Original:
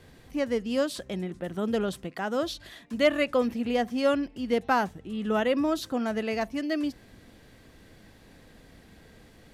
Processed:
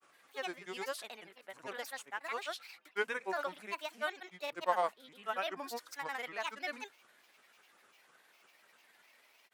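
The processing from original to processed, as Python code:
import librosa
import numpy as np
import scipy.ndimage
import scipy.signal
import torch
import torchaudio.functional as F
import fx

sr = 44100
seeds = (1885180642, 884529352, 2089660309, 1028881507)

y = scipy.signal.sosfilt(scipy.signal.butter(2, 1200.0, 'highpass', fs=sr, output='sos'), x)
y = fx.peak_eq(y, sr, hz=4800.0, db=-8.5, octaves=2.0)
y = fx.granulator(y, sr, seeds[0], grain_ms=100.0, per_s=20.0, spray_ms=100.0, spread_st=7)
y = F.gain(torch.from_numpy(y), 1.0).numpy()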